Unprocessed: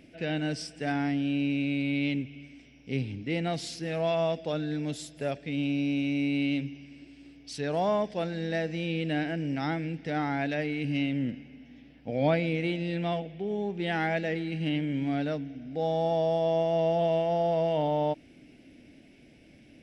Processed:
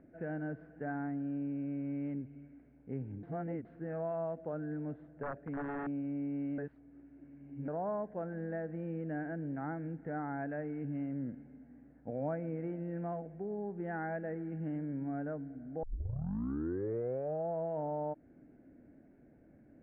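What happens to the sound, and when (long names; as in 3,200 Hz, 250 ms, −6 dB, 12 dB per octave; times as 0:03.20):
0:03.23–0:03.65: reverse
0:05.23–0:05.87: wrap-around overflow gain 24.5 dB
0:06.58–0:07.68: reverse
0:15.83: tape start 1.65 s
whole clip: elliptic low-pass filter 1,600 Hz, stop band 80 dB; downward compressor 2 to 1, threshold −33 dBFS; level −4.5 dB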